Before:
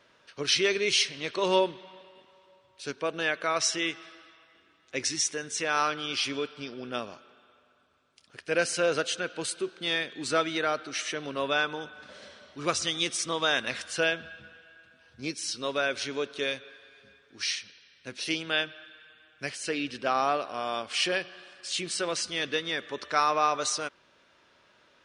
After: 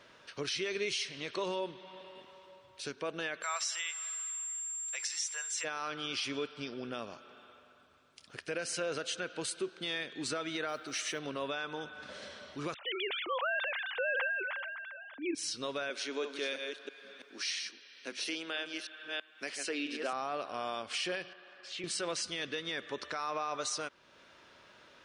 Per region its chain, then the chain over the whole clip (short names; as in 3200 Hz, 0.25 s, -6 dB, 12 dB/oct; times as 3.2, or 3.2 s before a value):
3.42–5.63 HPF 810 Hz 24 dB/oct + whine 7400 Hz -35 dBFS
10.68–11.19 high shelf 8300 Hz +9 dB + modulation noise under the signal 34 dB
12.74–15.35 sine-wave speech + sustainer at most 31 dB/s
15.9–20.13 reverse delay 0.33 s, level -7.5 dB + HPF 240 Hz 24 dB/oct
21.33–21.84 HPF 470 Hz 6 dB/oct + tape spacing loss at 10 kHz 28 dB
whole clip: compressor 1.5:1, threshold -50 dBFS; limiter -29 dBFS; gain +3.5 dB